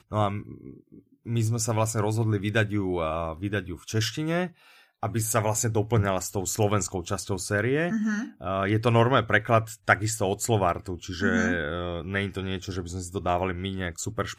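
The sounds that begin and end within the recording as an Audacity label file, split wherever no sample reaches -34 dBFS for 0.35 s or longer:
1.260000	4.470000	sound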